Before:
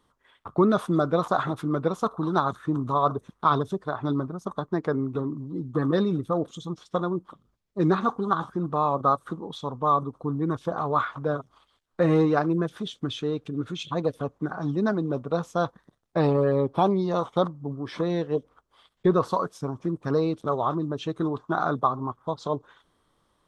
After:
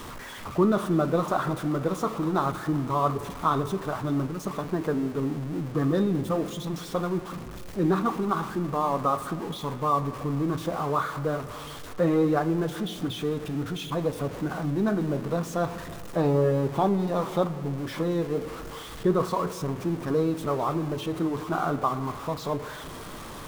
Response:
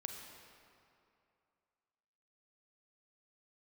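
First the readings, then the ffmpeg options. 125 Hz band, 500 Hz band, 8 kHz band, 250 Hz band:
+0.5 dB, −1.0 dB, can't be measured, 0.0 dB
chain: -filter_complex "[0:a]aeval=exprs='val(0)+0.5*0.0299*sgn(val(0))':channel_layout=same,bandreject=frequency=60:width_type=h:width=6,bandreject=frequency=120:width_type=h:width=6,asplit=2[link_01][link_02];[1:a]atrim=start_sample=2205,lowpass=2700,lowshelf=frequency=380:gain=6[link_03];[link_02][link_03]afir=irnorm=-1:irlink=0,volume=-5.5dB[link_04];[link_01][link_04]amix=inputs=2:normalize=0,flanger=delay=8.1:depth=7.8:regen=-69:speed=0.24:shape=triangular,volume=-1.5dB"

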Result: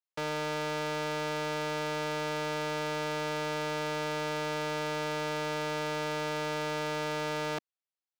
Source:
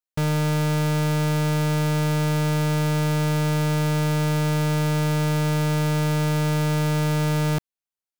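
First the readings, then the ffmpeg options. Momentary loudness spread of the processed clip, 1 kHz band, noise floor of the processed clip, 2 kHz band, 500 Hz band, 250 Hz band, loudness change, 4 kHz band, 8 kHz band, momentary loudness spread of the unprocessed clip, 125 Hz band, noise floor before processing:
0 LU, −4.0 dB, below −85 dBFS, −4.0 dB, −5.0 dB, −15.0 dB, −10.5 dB, −5.0 dB, −10.5 dB, 0 LU, −22.0 dB, below −85 dBFS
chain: -filter_complex "[0:a]acrossover=split=300 6300:gain=0.0708 1 0.2[link_01][link_02][link_03];[link_01][link_02][link_03]amix=inputs=3:normalize=0,volume=-4dB"

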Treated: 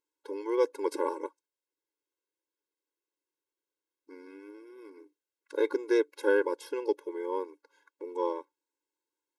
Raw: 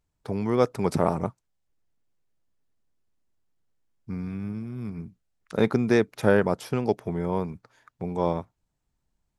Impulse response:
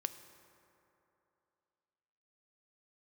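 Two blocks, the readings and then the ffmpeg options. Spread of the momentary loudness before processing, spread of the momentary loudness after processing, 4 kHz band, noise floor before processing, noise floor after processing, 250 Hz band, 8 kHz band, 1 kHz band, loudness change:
14 LU, 22 LU, −6.5 dB, −78 dBFS, below −85 dBFS, −9.5 dB, can't be measured, −6.5 dB, −4.5 dB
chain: -af "afftfilt=real='re*eq(mod(floor(b*sr/1024/280),2),1)':imag='im*eq(mod(floor(b*sr/1024/280),2),1)':win_size=1024:overlap=0.75,volume=-3dB"

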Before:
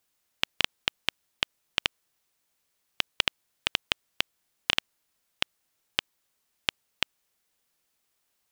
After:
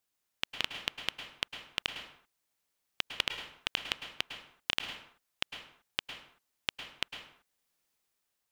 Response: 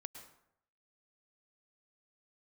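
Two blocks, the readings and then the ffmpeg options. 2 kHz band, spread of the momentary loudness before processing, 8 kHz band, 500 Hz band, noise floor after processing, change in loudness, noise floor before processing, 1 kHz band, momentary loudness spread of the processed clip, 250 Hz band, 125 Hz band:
−5.5 dB, 5 LU, −6.0 dB, −5.5 dB, −83 dBFS, −6.0 dB, −77 dBFS, −5.0 dB, 13 LU, −5.5 dB, −5.5 dB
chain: -filter_complex "[0:a]dynaudnorm=framelen=120:gausssize=11:maxgain=6dB[link_01];[1:a]atrim=start_sample=2205,afade=type=out:start_time=0.44:duration=0.01,atrim=end_sample=19845[link_02];[link_01][link_02]afir=irnorm=-1:irlink=0,volume=-2dB"

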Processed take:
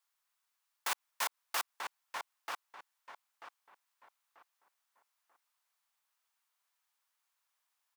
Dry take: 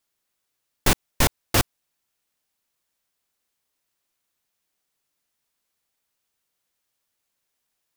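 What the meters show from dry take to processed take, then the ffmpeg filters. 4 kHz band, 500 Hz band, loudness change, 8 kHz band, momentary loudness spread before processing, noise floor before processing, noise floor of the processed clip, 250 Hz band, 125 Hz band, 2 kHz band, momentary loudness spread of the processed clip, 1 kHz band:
−13.0 dB, −20.5 dB, −16.0 dB, −14.0 dB, 4 LU, −79 dBFS, −84 dBFS, −34.0 dB, below −40 dB, −10.5 dB, 20 LU, −8.5 dB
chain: -filter_complex "[0:a]alimiter=limit=-16dB:level=0:latency=1:release=95,highpass=frequency=1000:width_type=q:width=1.9,asplit=2[link_01][link_02];[link_02]adelay=938,lowpass=frequency=2200:poles=1,volume=-3dB,asplit=2[link_03][link_04];[link_04]adelay=938,lowpass=frequency=2200:poles=1,volume=0.32,asplit=2[link_05][link_06];[link_06]adelay=938,lowpass=frequency=2200:poles=1,volume=0.32,asplit=2[link_07][link_08];[link_08]adelay=938,lowpass=frequency=2200:poles=1,volume=0.32[link_09];[link_03][link_05][link_07][link_09]amix=inputs=4:normalize=0[link_10];[link_01][link_10]amix=inputs=2:normalize=0,volume=-5.5dB"

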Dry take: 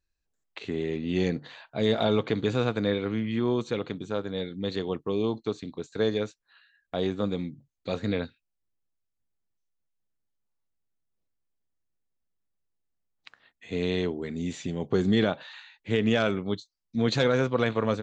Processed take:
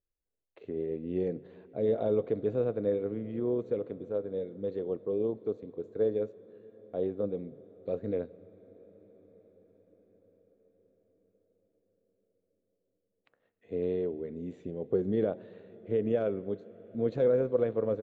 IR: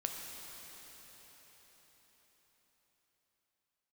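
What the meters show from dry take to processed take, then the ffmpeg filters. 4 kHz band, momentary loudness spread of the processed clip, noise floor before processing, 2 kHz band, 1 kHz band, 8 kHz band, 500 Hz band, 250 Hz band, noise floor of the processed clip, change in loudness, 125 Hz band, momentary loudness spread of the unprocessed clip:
below −25 dB, 12 LU, −81 dBFS, below −15 dB, −12.0 dB, can't be measured, −1.0 dB, −7.0 dB, −82 dBFS, −4.0 dB, −9.0 dB, 12 LU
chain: -filter_complex "[0:a]asplit=2[link_01][link_02];[1:a]atrim=start_sample=2205,asetrate=25137,aresample=44100[link_03];[link_02][link_03]afir=irnorm=-1:irlink=0,volume=-19.5dB[link_04];[link_01][link_04]amix=inputs=2:normalize=0,tremolo=f=88:d=0.261,firequalizer=gain_entry='entry(200,0);entry(500,10);entry(850,-6);entry(4700,-22)':delay=0.05:min_phase=1,volume=-9dB"

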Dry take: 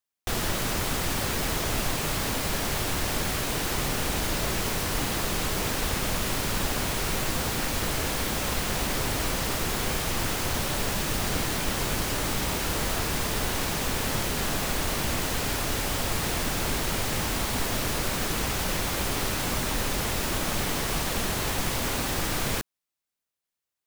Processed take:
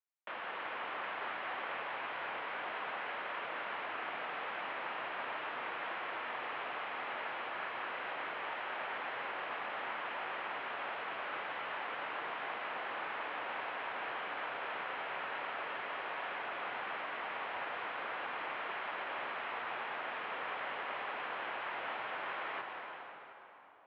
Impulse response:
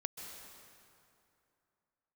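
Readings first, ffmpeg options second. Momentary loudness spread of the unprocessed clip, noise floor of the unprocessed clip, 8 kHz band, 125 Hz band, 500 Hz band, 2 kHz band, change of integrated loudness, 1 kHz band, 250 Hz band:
0 LU, below −85 dBFS, below −40 dB, −35.5 dB, −12.0 dB, −6.5 dB, −12.5 dB, −5.5 dB, −23.5 dB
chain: -filter_complex "[0:a]highpass=frequency=350:width_type=q:width=0.5412,highpass=frequency=350:width_type=q:width=1.307,lowpass=frequency=3300:width_type=q:width=0.5176,lowpass=frequency=3300:width_type=q:width=0.7071,lowpass=frequency=3300:width_type=q:width=1.932,afreqshift=-150,acrossover=split=590 2500:gain=0.1 1 0.224[link_01][link_02][link_03];[link_01][link_02][link_03]amix=inputs=3:normalize=0[link_04];[1:a]atrim=start_sample=2205,asetrate=32193,aresample=44100[link_05];[link_04][link_05]afir=irnorm=-1:irlink=0,volume=-5dB"

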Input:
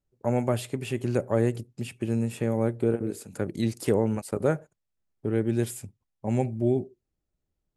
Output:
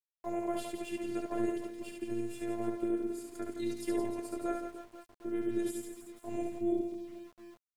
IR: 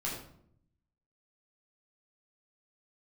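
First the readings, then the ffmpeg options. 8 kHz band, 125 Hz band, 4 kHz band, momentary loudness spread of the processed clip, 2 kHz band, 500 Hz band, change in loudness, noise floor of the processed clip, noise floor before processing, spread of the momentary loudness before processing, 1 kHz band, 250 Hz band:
−7.5 dB, −23.5 dB, −7.5 dB, 13 LU, −9.0 dB, −9.0 dB, −9.0 dB, below −85 dBFS, −82 dBFS, 9 LU, −5.5 dB, −6.5 dB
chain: -af "aecho=1:1:70|168|305.2|497.3|766.2:0.631|0.398|0.251|0.158|0.1,afftfilt=real='hypot(re,im)*cos(PI*b)':imag='0':win_size=512:overlap=0.75,aeval=exprs='val(0)*gte(abs(val(0)),0.00376)':channel_layout=same,volume=-6.5dB"

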